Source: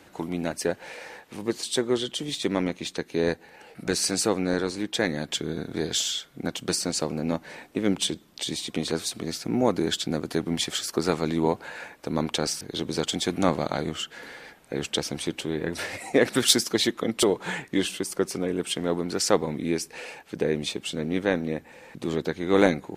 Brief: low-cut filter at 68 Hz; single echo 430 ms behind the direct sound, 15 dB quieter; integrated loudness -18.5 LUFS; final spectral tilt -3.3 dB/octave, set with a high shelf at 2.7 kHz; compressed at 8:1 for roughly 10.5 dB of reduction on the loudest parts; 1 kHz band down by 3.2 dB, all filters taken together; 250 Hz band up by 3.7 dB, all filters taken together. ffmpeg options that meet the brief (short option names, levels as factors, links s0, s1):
-af "highpass=68,equalizer=f=250:t=o:g=5,equalizer=f=1000:t=o:g=-5.5,highshelf=f=2700:g=5,acompressor=threshold=0.0794:ratio=8,aecho=1:1:430:0.178,volume=2.99"